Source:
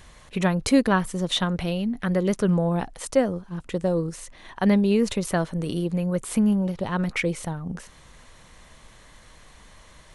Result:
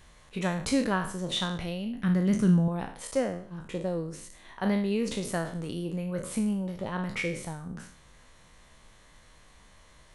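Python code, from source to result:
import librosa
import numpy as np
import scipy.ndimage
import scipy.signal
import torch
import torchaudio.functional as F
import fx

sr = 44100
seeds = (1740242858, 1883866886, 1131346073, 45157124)

y = fx.spec_trails(x, sr, decay_s=0.52)
y = fx.graphic_eq(y, sr, hz=(125, 250, 500), db=(11, 7, -8), at=(2.03, 2.68))
y = y * librosa.db_to_amplitude(-8.0)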